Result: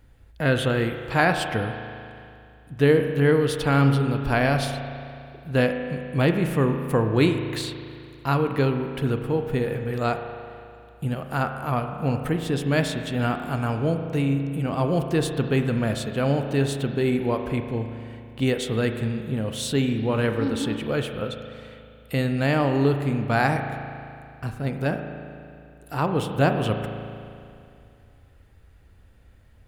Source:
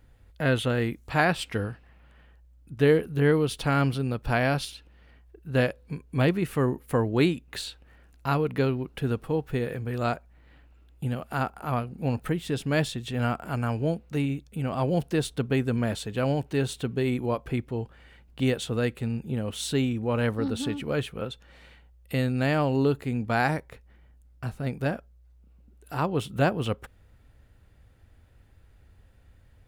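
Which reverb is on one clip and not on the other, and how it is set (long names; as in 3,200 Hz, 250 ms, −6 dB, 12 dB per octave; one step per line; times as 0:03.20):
spring reverb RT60 2.5 s, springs 36 ms, chirp 80 ms, DRR 6 dB
level +2.5 dB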